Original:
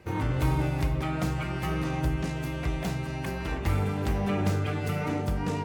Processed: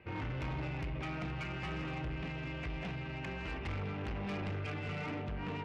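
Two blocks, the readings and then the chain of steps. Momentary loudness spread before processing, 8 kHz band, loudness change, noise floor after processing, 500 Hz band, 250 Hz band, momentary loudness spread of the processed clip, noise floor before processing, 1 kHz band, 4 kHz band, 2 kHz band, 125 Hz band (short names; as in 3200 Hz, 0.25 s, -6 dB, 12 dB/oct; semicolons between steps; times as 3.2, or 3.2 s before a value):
5 LU, under -15 dB, -10.0 dB, -42 dBFS, -10.5 dB, -11.0 dB, 2 LU, -34 dBFS, -9.5 dB, -6.5 dB, -5.5 dB, -11.0 dB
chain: ladder low-pass 3100 Hz, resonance 50%; soft clip -37 dBFS, distortion -11 dB; gain +2.5 dB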